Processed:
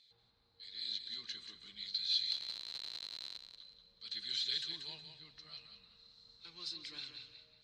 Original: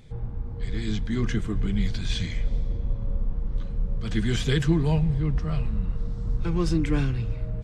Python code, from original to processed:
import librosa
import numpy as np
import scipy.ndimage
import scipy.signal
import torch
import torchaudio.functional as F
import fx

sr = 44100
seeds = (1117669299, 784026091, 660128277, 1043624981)

p1 = fx.schmitt(x, sr, flips_db=-38.5, at=(2.31, 3.38))
p2 = fx.bandpass_q(p1, sr, hz=4100.0, q=20.0)
p3 = p2 + fx.echo_feedback(p2, sr, ms=184, feedback_pct=27, wet_db=-8.0, dry=0)
y = p3 * 10.0 ** (12.5 / 20.0)